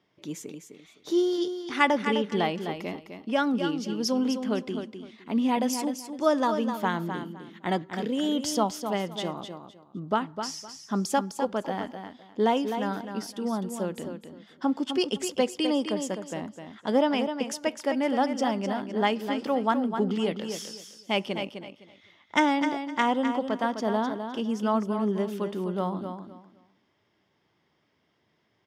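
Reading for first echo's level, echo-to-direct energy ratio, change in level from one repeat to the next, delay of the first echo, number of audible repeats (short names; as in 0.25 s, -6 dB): -8.0 dB, -8.0 dB, -13.0 dB, 0.256 s, 3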